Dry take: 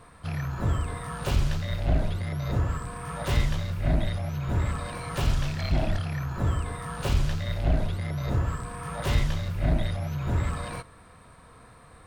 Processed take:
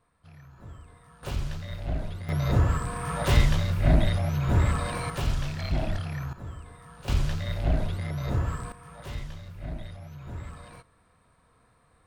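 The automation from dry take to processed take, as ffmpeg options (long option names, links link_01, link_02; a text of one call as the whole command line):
ffmpeg -i in.wav -af "asetnsamples=nb_out_samples=441:pad=0,asendcmd='1.23 volume volume -6.5dB;2.29 volume volume 4dB;5.1 volume volume -2.5dB;6.33 volume volume -13.5dB;7.08 volume volume -1dB;8.72 volume volume -12dB',volume=-19dB" out.wav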